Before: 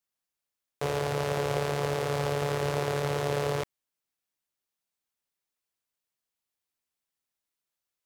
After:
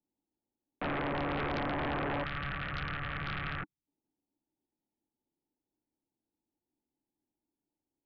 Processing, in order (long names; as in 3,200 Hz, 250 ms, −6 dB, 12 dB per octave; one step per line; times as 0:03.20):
formant resonators in series u
parametric band 2,300 Hz −8.5 dB 2.4 octaves
sine wavefolder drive 17 dB, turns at −30.5 dBFS
gain on a spectral selection 0:02.24–0:03.87, 210–1,100 Hz −13 dB